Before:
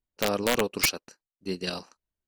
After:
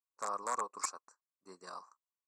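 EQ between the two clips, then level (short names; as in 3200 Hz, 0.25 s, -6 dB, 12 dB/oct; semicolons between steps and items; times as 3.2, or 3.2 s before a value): double band-pass 2900 Hz, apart 2.8 oct; air absorption 60 m; +4.0 dB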